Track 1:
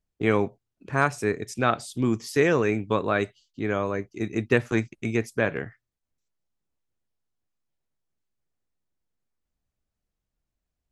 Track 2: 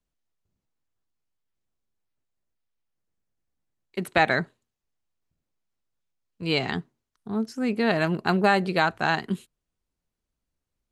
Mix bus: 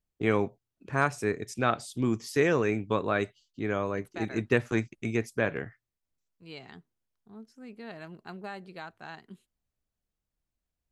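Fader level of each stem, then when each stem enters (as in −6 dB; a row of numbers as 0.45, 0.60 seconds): −3.5, −20.0 decibels; 0.00, 0.00 seconds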